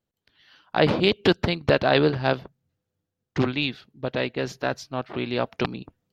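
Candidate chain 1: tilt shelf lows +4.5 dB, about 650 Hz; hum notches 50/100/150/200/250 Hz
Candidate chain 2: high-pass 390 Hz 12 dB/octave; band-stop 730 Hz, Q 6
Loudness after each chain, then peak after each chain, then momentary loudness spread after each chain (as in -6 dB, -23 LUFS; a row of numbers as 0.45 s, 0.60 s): -23.5 LUFS, -27.0 LUFS; -4.5 dBFS, -4.0 dBFS; 11 LU, 11 LU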